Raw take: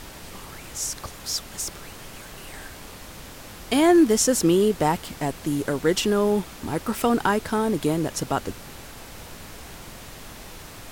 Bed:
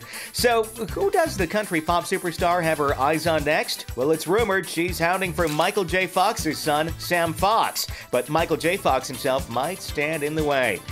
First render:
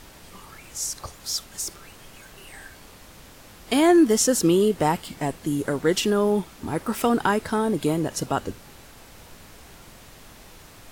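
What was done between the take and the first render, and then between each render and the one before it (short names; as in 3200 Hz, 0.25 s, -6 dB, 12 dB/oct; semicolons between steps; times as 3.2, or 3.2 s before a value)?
noise print and reduce 6 dB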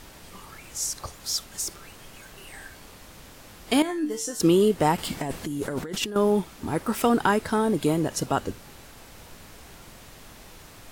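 3.82–4.4 resonator 150 Hz, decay 0.32 s, mix 90%; 4.98–6.16 negative-ratio compressor -30 dBFS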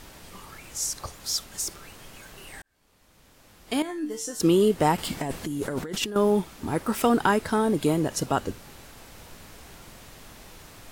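2.62–4.73 fade in; 6.05–7.31 short-mantissa float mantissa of 6-bit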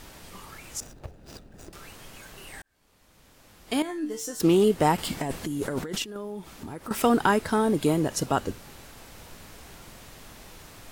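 0.8–1.73 median filter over 41 samples; 3.97–4.64 self-modulated delay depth 0.079 ms; 6.02–6.91 compressor 4:1, threshold -35 dBFS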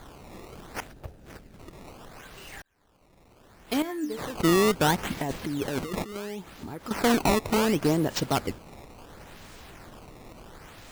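one-sided clip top -20.5 dBFS; decimation with a swept rate 16×, swing 160% 0.71 Hz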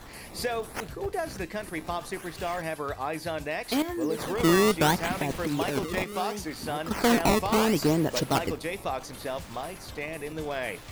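add bed -11 dB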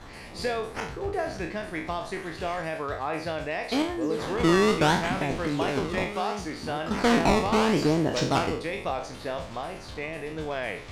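spectral trails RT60 0.49 s; air absorption 70 m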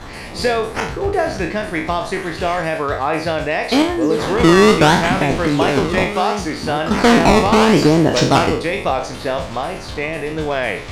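gain +11.5 dB; limiter -1 dBFS, peak gain reduction 3 dB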